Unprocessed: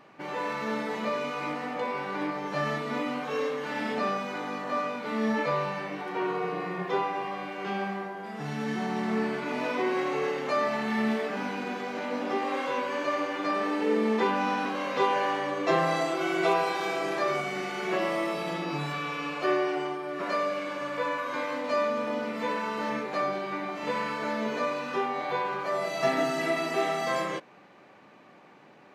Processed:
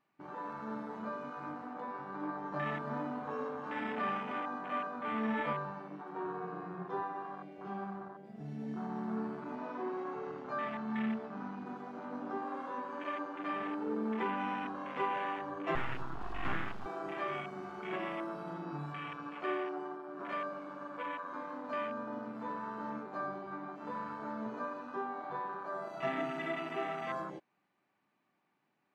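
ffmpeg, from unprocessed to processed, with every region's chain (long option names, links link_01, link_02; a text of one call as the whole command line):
ffmpeg -i in.wav -filter_complex "[0:a]asettb=1/sr,asplit=3[link_01][link_02][link_03];[link_01]atrim=end=2.234[link_04];[link_02]atrim=start=2.23:end=5.53,asetpts=PTS-STARTPTS,afade=type=in:duration=0.004:curve=qsin,afade=type=out:start_time=3.296:duration=0.004:curve=qsin,equalizer=frequency=890:width=0.46:gain=3,aecho=1:1:307:0.447,atrim=end_sample=145530[link_05];[link_03]atrim=start=5.526[link_06];[link_04][link_05]acrossfade=duration=0.004:curve1=hsin:curve2=qsin[link_07];[link_07][link_06]acrossfade=duration=0.004:curve1=qsin:curve2=hsin,asettb=1/sr,asplit=3[link_08][link_09][link_10];[link_08]atrim=end=9.554[link_11];[link_09]atrim=start=9.55:end=11.66,asetpts=PTS-STARTPTS,afade=type=in:duration=0.004:curve=qsin,afade=type=out:start_time=2.106:duration=0.004:curve=qsin,lowpass=6900,asubboost=boost=3.5:cutoff=200,bandreject=frequency=48.16:width_type=h:width=4,bandreject=frequency=96.32:width_type=h:width=4,bandreject=frequency=144.48:width_type=h:width=4,bandreject=frequency=192.64:width_type=h:width=4,bandreject=frequency=240.8:width_type=h:width=4,bandreject=frequency=288.96:width_type=h:width=4,bandreject=frequency=337.12:width_type=h:width=4,bandreject=frequency=385.28:width_type=h:width=4,bandreject=frequency=433.44:width_type=h:width=4,bandreject=frequency=481.6:width_type=h:width=4,bandreject=frequency=529.76:width_type=h:width=4,bandreject=frequency=577.92:width_type=h:width=4,bandreject=frequency=626.08:width_type=h:width=4,bandreject=frequency=674.24:width_type=h:width=4,bandreject=frequency=722.4:width_type=h:width=4,bandreject=frequency=770.56:width_type=h:width=4,bandreject=frequency=818.72:width_type=h:width=4,bandreject=frequency=866.88:width_type=h:width=4,bandreject=frequency=915.04:width_type=h:width=4,bandreject=frequency=963.2:width_type=h:width=4,bandreject=frequency=1011.36:width_type=h:width=4,bandreject=frequency=1059.52:width_type=h:width=4,bandreject=frequency=1107.68:width_type=h:width=4,bandreject=frequency=1155.84:width_type=h:width=4,bandreject=frequency=1204:width_type=h:width=4,bandreject=frequency=1252.16:width_type=h:width=4,bandreject=frequency=1300.32:width_type=h:width=4,bandreject=frequency=1348.48:width_type=h:width=4,bandreject=frequency=1396.64:width_type=h:width=4,bandreject=frequency=1444.8:width_type=h:width=4,bandreject=frequency=1492.96:width_type=h:width=4,bandreject=frequency=1541.12:width_type=h:width=4,bandreject=frequency=1589.28:width_type=h:width=4,bandreject=frequency=1637.44:width_type=h:width=4,bandreject=frequency=1685.6:width_type=h:width=4,bandreject=frequency=1733.76:width_type=h:width=4,bandreject=frequency=1781.92:width_type=h:width=4,bandreject=frequency=1830.08:width_type=h:width=4[link_12];[link_10]atrim=start=11.656[link_13];[link_11][link_12]acrossfade=duration=0.004:curve1=hsin:curve2=qsin[link_14];[link_14][link_13]acrossfade=duration=0.004:curve1=qsin:curve2=hsin,asettb=1/sr,asplit=3[link_15][link_16][link_17];[link_15]atrim=end=15.754[link_18];[link_16]atrim=start=15.75:end=16.86,asetpts=PTS-STARTPTS,afade=type=in:duration=0.004:curve=qsin,afade=type=out:start_time=1.106:duration=0.004:curve=qsin,lowpass=3700,aeval=exprs='abs(val(0))':channel_layout=same[link_19];[link_17]atrim=start=16.856[link_20];[link_18][link_19]acrossfade=duration=0.004:curve1=hsin:curve2=qsin[link_21];[link_21][link_20]acrossfade=duration=0.004:curve1=qsin:curve2=hsin,afwtdn=0.0282,equalizer=frequency=510:width=2.4:gain=-8.5,volume=-7dB" out.wav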